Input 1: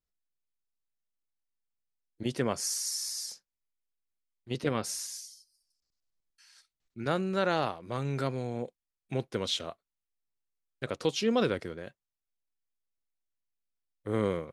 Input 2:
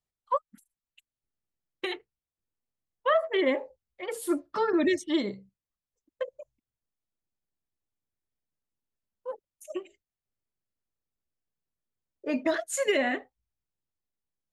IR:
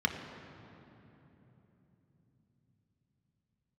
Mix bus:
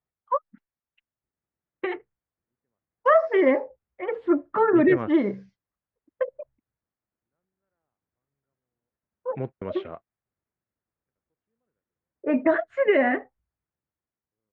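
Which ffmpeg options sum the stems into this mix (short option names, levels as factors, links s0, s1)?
-filter_complex "[0:a]adelay=250,volume=0.708[s0];[1:a]highpass=55,volume=1.33,asplit=2[s1][s2];[s2]apad=whole_len=651713[s3];[s0][s3]sidechaingate=range=0.00141:threshold=0.00158:ratio=16:detection=peak[s4];[s4][s1]amix=inputs=2:normalize=0,lowpass=f=2000:w=0.5412,lowpass=f=2000:w=1.3066,dynaudnorm=f=420:g=7:m=1.58"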